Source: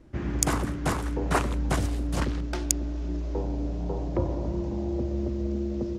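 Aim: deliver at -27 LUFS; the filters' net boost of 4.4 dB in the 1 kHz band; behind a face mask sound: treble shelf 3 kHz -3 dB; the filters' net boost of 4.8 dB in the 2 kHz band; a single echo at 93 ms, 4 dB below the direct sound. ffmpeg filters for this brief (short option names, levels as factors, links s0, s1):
-af "equalizer=f=1000:t=o:g=4.5,equalizer=f=2000:t=o:g=5.5,highshelf=f=3000:g=-3,aecho=1:1:93:0.631,volume=1.06"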